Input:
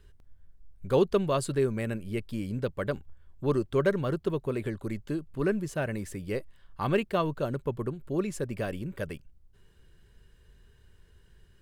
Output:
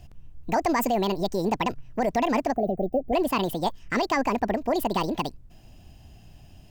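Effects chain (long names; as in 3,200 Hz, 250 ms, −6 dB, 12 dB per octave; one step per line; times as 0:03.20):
gain on a spectral selection 0:04.44–0:05.43, 470–9,300 Hz −28 dB
brickwall limiter −23.5 dBFS, peak gain reduction 10.5 dB
wrong playback speed 45 rpm record played at 78 rpm
level +8 dB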